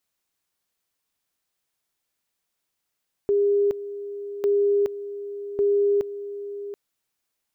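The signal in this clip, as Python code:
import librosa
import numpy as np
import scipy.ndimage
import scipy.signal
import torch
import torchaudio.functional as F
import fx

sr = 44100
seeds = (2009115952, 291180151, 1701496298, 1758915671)

y = fx.two_level_tone(sr, hz=405.0, level_db=-17.0, drop_db=13.5, high_s=0.42, low_s=0.73, rounds=3)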